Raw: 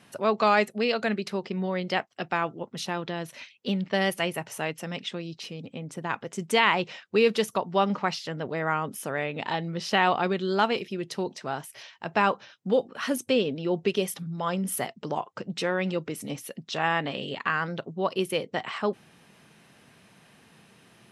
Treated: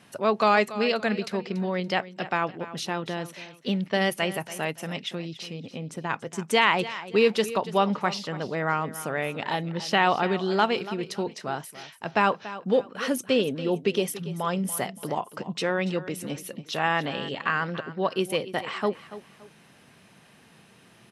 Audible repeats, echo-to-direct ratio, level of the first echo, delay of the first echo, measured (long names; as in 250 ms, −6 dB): 2, −14.5 dB, −15.0 dB, 285 ms